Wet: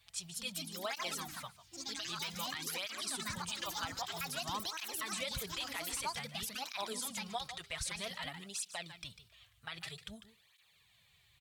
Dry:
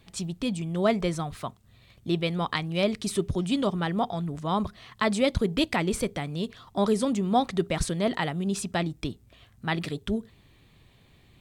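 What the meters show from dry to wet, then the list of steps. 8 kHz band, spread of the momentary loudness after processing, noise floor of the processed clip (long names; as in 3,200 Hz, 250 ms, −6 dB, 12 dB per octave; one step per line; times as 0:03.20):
−1.0 dB, 10 LU, −69 dBFS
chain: guitar amp tone stack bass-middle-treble 10-0-10
on a send: single-tap delay 148 ms −15 dB
on the sum: delay with pitch and tempo change per echo 230 ms, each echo +4 semitones, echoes 3
low-shelf EQ 130 Hz −7.5 dB
brickwall limiter −26 dBFS, peak gain reduction 11 dB
through-zero flanger with one copy inverted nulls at 0.52 Hz, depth 5.6 ms
level +1.5 dB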